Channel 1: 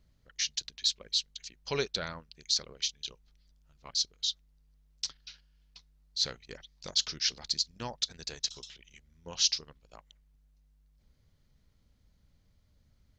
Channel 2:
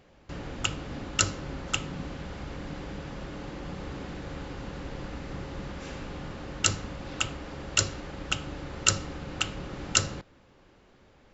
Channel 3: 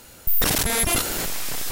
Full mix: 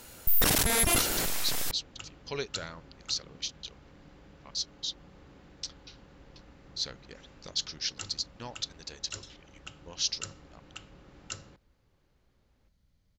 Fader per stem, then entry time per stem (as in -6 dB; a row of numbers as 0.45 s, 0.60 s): -3.5 dB, -16.5 dB, -3.5 dB; 0.60 s, 1.35 s, 0.00 s